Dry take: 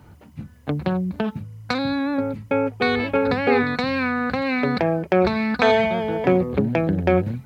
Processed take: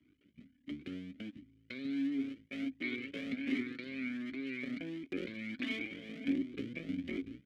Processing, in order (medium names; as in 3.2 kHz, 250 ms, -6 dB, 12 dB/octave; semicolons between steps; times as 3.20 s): cycle switcher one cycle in 2, muted; vowel filter i; Shepard-style flanger rising 1.4 Hz; trim +1 dB